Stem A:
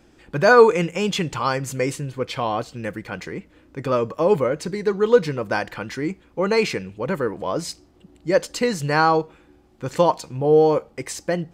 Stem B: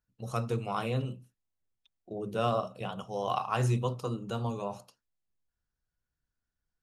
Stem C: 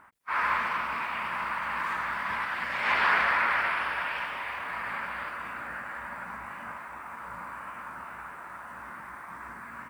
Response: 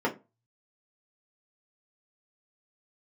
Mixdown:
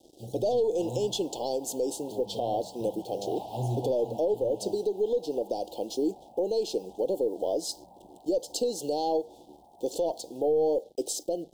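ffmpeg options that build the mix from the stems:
-filter_complex "[0:a]highpass=f=310:w=0.5412,highpass=f=310:w=1.3066,aeval=exprs='0.794*(cos(1*acos(clip(val(0)/0.794,-1,1)))-cos(1*PI/2))+0.0891*(cos(5*acos(clip(val(0)/0.794,-1,1)))-cos(5*PI/2))+0.0251*(cos(6*acos(clip(val(0)/0.794,-1,1)))-cos(6*PI/2))':c=same,volume=0.5dB[a];[1:a]volume=-2.5dB[b];[2:a]equalizer=f=800:w=1.8:g=13,adelay=500,volume=-10.5dB[c];[a][b]amix=inputs=2:normalize=0,acrusher=bits=7:mix=0:aa=0.5,acompressor=threshold=-24dB:ratio=2,volume=0dB[d];[c][d]amix=inputs=2:normalize=0,asuperstop=centerf=1600:order=12:qfactor=0.65,equalizer=f=5.5k:t=o:w=2.6:g=-4.5,alimiter=limit=-19dB:level=0:latency=1:release=179"

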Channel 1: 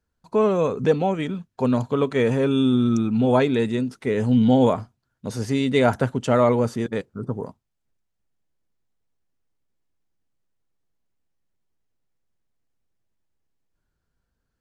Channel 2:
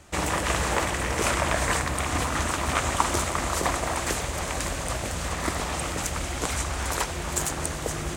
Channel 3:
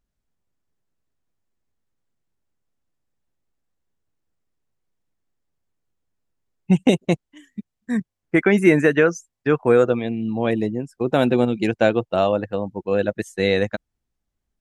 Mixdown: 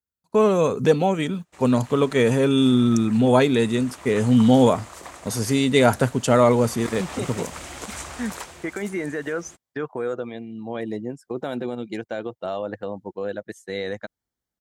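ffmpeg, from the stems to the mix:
-filter_complex "[0:a]aemphasis=mode=production:type=50fm,agate=range=-20dB:threshold=-34dB:ratio=16:detection=peak,volume=2dB[a];[1:a]adelay=1400,volume=-4dB,afade=t=in:st=3.56:d=0.5:silence=0.421697,afade=t=in:st=6.48:d=0.58:silence=0.334965,afade=t=out:st=8.06:d=0.76:silence=0.251189[b];[2:a]bandreject=f=2.6k:w=5.5,alimiter=limit=-9.5dB:level=0:latency=1,tremolo=f=0.64:d=0.49,adelay=300,volume=-1dB[c];[b][c]amix=inputs=2:normalize=0,lowshelf=f=220:g=-7.5,alimiter=limit=-18.5dB:level=0:latency=1:release=78,volume=0dB[d];[a][d]amix=inputs=2:normalize=0,highpass=51"

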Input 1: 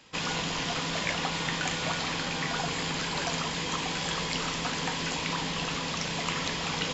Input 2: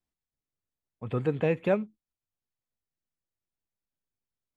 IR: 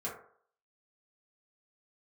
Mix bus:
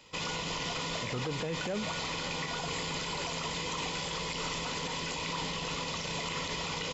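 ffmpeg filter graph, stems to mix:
-filter_complex "[0:a]bandreject=f=1.6k:w=5.9,aecho=1:1:2:0.32,volume=-1dB[a];[1:a]volume=2.5dB[b];[a][b]amix=inputs=2:normalize=0,alimiter=level_in=2dB:limit=-24dB:level=0:latency=1:release=52,volume=-2dB"

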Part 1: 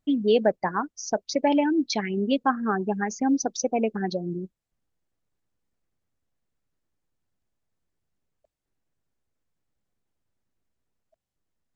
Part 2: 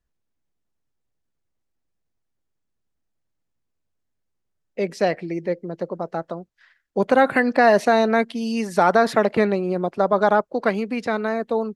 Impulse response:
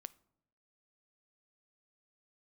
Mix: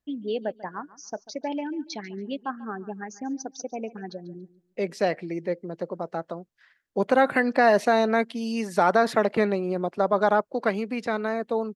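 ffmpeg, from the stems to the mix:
-filter_complex "[0:a]volume=-8.5dB,asplit=2[a][b];[b]volume=-18.5dB[c];[1:a]volume=-3.5dB[d];[c]aecho=0:1:142|284|426|568:1|0.23|0.0529|0.0122[e];[a][d][e]amix=inputs=3:normalize=0,lowshelf=f=67:g=-8.5"

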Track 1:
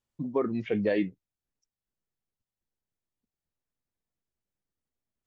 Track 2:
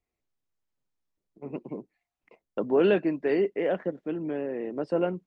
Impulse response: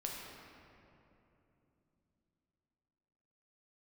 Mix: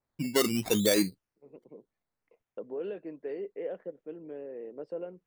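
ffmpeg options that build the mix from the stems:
-filter_complex "[0:a]acrusher=samples=14:mix=1:aa=0.000001:lfo=1:lforange=8.4:lforate=0.7,adynamicequalizer=threshold=0.00447:dfrequency=3000:dqfactor=0.7:tfrequency=3000:tqfactor=0.7:attack=5:release=100:ratio=0.375:range=4:mode=boostabove:tftype=highshelf,volume=1dB,asplit=2[a][b];[1:a]alimiter=limit=-19dB:level=0:latency=1:release=211,equalizer=f=480:t=o:w=0.58:g=11,volume=-16dB[c];[b]apad=whole_len=232243[d];[c][d]sidechaincompress=threshold=-29dB:ratio=8:attack=7.9:release=1220[e];[a][e]amix=inputs=2:normalize=0"

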